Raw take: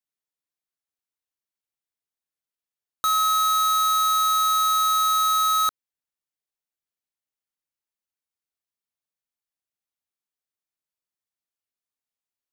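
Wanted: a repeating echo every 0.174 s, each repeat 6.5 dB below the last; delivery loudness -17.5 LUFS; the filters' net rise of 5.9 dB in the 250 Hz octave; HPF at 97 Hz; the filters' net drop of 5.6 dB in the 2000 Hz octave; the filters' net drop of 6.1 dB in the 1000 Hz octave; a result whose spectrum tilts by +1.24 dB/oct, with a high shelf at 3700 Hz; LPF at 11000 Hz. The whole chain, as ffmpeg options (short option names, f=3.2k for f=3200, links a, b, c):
-af "highpass=97,lowpass=11k,equalizer=f=250:t=o:g=8.5,equalizer=f=1k:t=o:g=-6.5,equalizer=f=2k:t=o:g=-7.5,highshelf=f=3.7k:g=8,aecho=1:1:174|348|522|696|870|1044:0.473|0.222|0.105|0.0491|0.0231|0.0109,volume=2dB"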